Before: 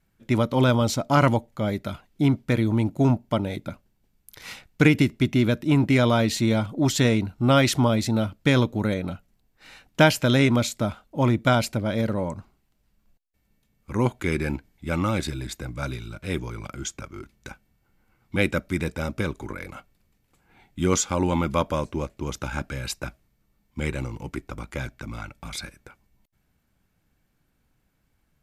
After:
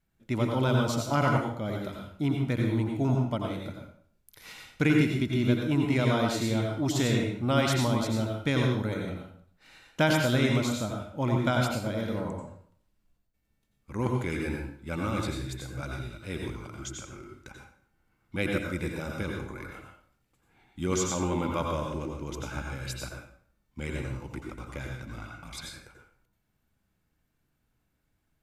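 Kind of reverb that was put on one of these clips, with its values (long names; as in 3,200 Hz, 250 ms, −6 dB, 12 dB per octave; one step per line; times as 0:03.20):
dense smooth reverb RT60 0.56 s, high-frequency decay 0.85×, pre-delay 75 ms, DRR 0.5 dB
level −8 dB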